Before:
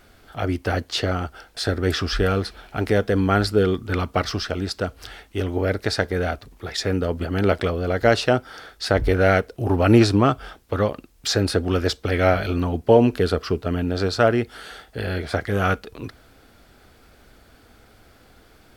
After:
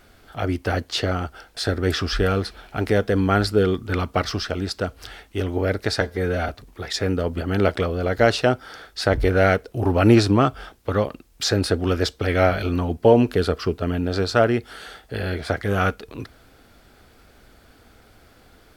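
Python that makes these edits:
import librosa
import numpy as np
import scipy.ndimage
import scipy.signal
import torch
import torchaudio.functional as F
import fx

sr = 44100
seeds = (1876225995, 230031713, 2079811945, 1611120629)

y = fx.edit(x, sr, fx.stretch_span(start_s=6.01, length_s=0.32, factor=1.5), tone=tone)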